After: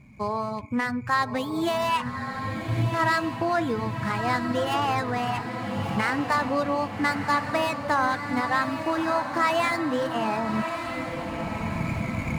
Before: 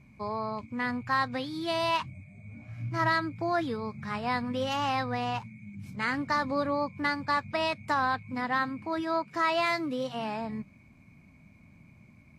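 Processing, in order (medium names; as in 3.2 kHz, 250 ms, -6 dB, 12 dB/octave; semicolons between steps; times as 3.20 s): median filter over 9 samples; recorder AGC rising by 15 dB/s; reverb removal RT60 0.68 s; echo that smears into a reverb 1220 ms, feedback 53%, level -7 dB; on a send at -20 dB: reverberation RT60 0.45 s, pre-delay 46 ms; on the sum: trim +4.5 dB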